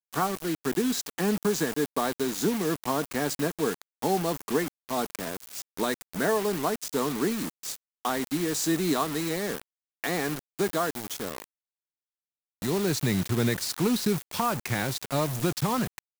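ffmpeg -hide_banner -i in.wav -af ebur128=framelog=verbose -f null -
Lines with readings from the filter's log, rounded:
Integrated loudness:
  I:         -28.6 LUFS
  Threshold: -38.7 LUFS
Loudness range:
  LRA:         3.4 LU
  Threshold: -49.1 LUFS
  LRA low:   -31.0 LUFS
  LRA high:  -27.6 LUFS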